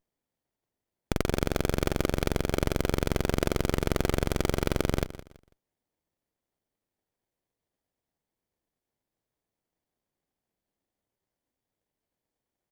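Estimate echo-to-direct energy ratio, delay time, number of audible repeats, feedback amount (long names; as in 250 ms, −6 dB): −14.5 dB, 165 ms, 2, 27%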